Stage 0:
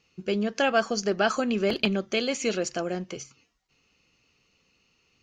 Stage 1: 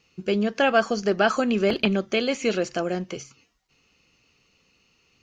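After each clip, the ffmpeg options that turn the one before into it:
ffmpeg -i in.wav -filter_complex "[0:a]acrossover=split=3500[link_01][link_02];[link_02]acompressor=threshold=-41dB:ratio=4:attack=1:release=60[link_03];[link_01][link_03]amix=inputs=2:normalize=0,volume=3.5dB" out.wav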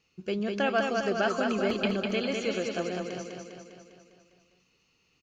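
ffmpeg -i in.wav -af "aecho=1:1:201|402|603|804|1005|1206|1407|1608:0.631|0.372|0.22|0.13|0.0765|0.0451|0.0266|0.0157,volume=-7.5dB" out.wav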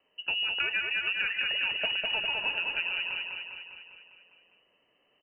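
ffmpeg -i in.wav -af "lowpass=frequency=2600:width_type=q:width=0.5098,lowpass=frequency=2600:width_type=q:width=0.6013,lowpass=frequency=2600:width_type=q:width=0.9,lowpass=frequency=2600:width_type=q:width=2.563,afreqshift=-3100,acompressor=threshold=-29dB:ratio=6,volume=2.5dB" out.wav

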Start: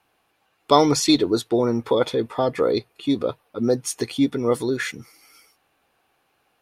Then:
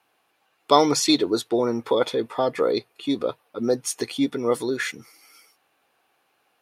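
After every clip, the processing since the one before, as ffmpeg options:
ffmpeg -i in.wav -af "highpass=frequency=280:poles=1" out.wav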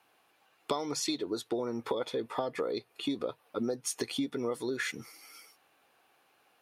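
ffmpeg -i in.wav -af "acompressor=threshold=-29dB:ratio=16" out.wav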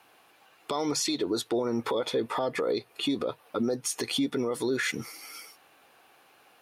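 ffmpeg -i in.wav -af "alimiter=level_in=4dB:limit=-24dB:level=0:latency=1:release=37,volume=-4dB,volume=8.5dB" out.wav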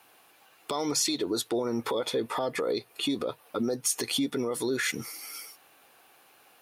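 ffmpeg -i in.wav -af "crystalizer=i=1:c=0,volume=-1dB" out.wav

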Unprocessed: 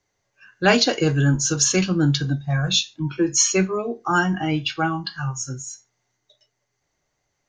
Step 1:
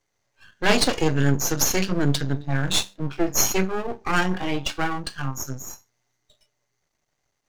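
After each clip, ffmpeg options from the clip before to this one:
ffmpeg -i in.wav -af "bandreject=frequency=98.17:width_type=h:width=4,bandreject=frequency=196.34:width_type=h:width=4,bandreject=frequency=294.51:width_type=h:width=4,bandreject=frequency=392.68:width_type=h:width=4,bandreject=frequency=490.85:width_type=h:width=4,bandreject=frequency=589.02:width_type=h:width=4,bandreject=frequency=687.19:width_type=h:width=4,bandreject=frequency=785.36:width_type=h:width=4,bandreject=frequency=883.53:width_type=h:width=4,bandreject=frequency=981.7:width_type=h:width=4,aeval=exprs='max(val(0),0)':channel_layout=same,volume=2dB" out.wav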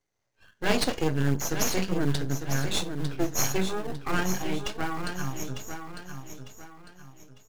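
ffmpeg -i in.wav -filter_complex "[0:a]asplit=2[link_01][link_02];[link_02]acrusher=samples=22:mix=1:aa=0.000001:lfo=1:lforange=35.2:lforate=3.4,volume=-7dB[link_03];[link_01][link_03]amix=inputs=2:normalize=0,aecho=1:1:901|1802|2703|3604:0.398|0.143|0.0516|0.0186,volume=-8dB" out.wav

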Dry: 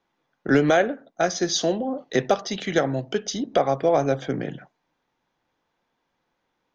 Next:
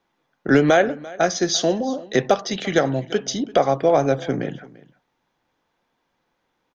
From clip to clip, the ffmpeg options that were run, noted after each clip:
ffmpeg -i in.wav -af "aecho=1:1:342:0.0944,volume=3dB" out.wav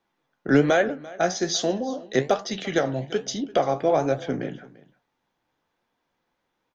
ffmpeg -i in.wav -af "flanger=delay=8.2:depth=9.6:regen=64:speed=1.2:shape=triangular" out.wav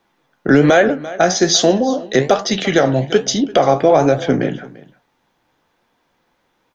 ffmpeg -i in.wav -af "alimiter=level_in=13dB:limit=-1dB:release=50:level=0:latency=1,volume=-1dB" out.wav

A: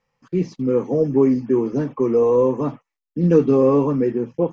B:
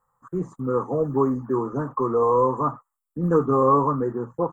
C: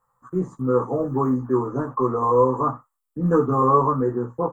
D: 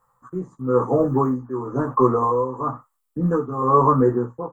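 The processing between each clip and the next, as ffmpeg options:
ffmpeg -i in.wav -af "firequalizer=gain_entry='entry(110,0);entry(190,-8);entry(540,-4);entry(1200,12);entry(2400,-28);entry(3600,-21);entry(5200,-27);entry(7500,9)':delay=0.05:min_phase=1" out.wav
ffmpeg -i in.wav -af "aecho=1:1:16|58:0.668|0.141" out.wav
ffmpeg -i in.wav -af "tremolo=f=1:d=0.78,volume=5.5dB" out.wav

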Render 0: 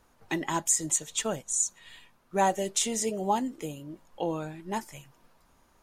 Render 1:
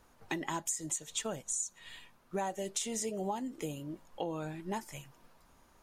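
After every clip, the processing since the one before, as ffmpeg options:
ffmpeg -i in.wav -af "acompressor=threshold=-33dB:ratio=6" out.wav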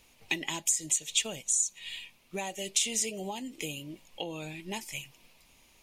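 ffmpeg -i in.wav -af "highshelf=frequency=1900:width_type=q:width=3:gain=8.5,volume=-1dB" out.wav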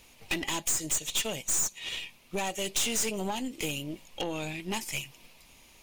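ffmpeg -i in.wav -af "aeval=exprs='(tanh(44.7*val(0)+0.6)-tanh(0.6))/44.7':channel_layout=same,volume=8dB" out.wav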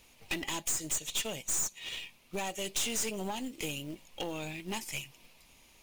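ffmpeg -i in.wav -af "acrusher=bits=5:mode=log:mix=0:aa=0.000001,volume=-4dB" out.wav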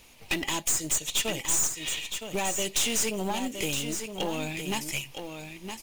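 ffmpeg -i in.wav -af "aecho=1:1:965:0.422,volume=6dB" out.wav

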